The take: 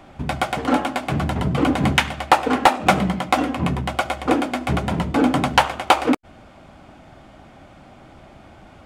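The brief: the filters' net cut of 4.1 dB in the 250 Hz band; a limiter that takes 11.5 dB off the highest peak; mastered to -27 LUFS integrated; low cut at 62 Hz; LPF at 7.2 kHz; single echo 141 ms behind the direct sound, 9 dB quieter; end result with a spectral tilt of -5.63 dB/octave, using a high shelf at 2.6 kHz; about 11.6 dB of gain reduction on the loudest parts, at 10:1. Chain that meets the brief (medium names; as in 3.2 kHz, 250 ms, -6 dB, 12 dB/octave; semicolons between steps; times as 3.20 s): high-pass 62 Hz; low-pass 7.2 kHz; peaking EQ 250 Hz -5 dB; treble shelf 2.6 kHz -8 dB; compression 10:1, threshold -22 dBFS; peak limiter -18.5 dBFS; delay 141 ms -9 dB; trim +3 dB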